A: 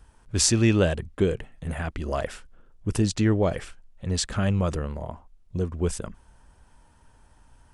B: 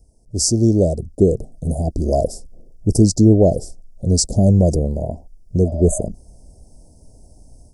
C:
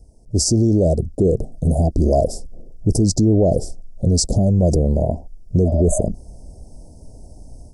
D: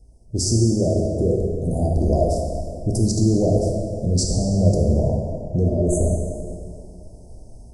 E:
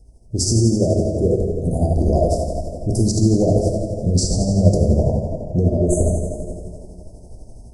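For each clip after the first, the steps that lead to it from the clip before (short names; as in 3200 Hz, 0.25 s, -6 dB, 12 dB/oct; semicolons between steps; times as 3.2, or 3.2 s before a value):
spectral repair 5.67–6.01, 560–6200 Hz after; Chebyshev band-stop 690–5000 Hz, order 4; AGC gain up to 10 dB; gain +2 dB
high shelf 5200 Hz -7 dB; maximiser +13 dB; gain -7 dB
plate-style reverb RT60 2.4 s, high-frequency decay 0.65×, DRR -1 dB; gain -6 dB
tremolo 12 Hz, depth 41%; gain +4 dB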